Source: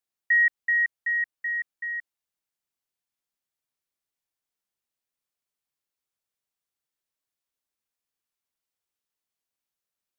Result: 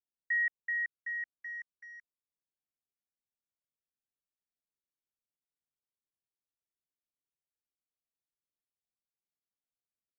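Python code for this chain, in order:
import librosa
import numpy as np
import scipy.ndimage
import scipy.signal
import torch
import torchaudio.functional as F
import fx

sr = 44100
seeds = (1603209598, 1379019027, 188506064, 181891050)

y = fx.wiener(x, sr, points=41)
y = fx.lowpass(y, sr, hz=1600.0, slope=6)
y = y * librosa.db_to_amplitude(-6.0)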